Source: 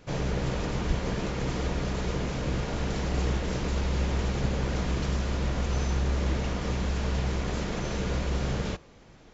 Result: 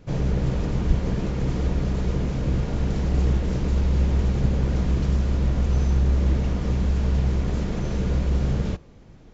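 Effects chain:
low-shelf EQ 400 Hz +12 dB
level −4 dB

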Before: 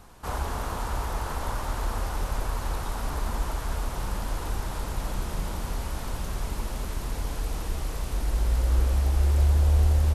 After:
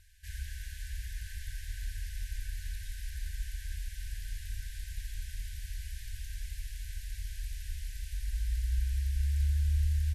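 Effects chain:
brick-wall band-stop 100–1,500 Hz
level −8 dB

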